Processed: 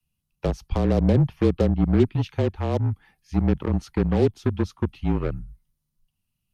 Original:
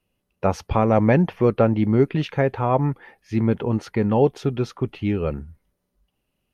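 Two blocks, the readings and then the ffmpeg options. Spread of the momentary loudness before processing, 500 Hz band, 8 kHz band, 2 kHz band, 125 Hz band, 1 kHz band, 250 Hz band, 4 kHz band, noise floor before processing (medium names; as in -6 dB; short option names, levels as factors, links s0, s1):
8 LU, -4.5 dB, no reading, -7.5 dB, 0.0 dB, -9.5 dB, -2.0 dB, -1.5 dB, -77 dBFS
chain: -filter_complex "[0:a]equalizer=f=1800:w=0.92:g=-11.5,afreqshift=-31,acrossover=split=220|980|3200[s0][s1][s2][s3];[s1]acrusher=bits=3:mix=0:aa=0.5[s4];[s0][s4][s2][s3]amix=inputs=4:normalize=0,acrossover=split=470[s5][s6];[s6]acompressor=threshold=0.0224:ratio=3[s7];[s5][s7]amix=inputs=2:normalize=0"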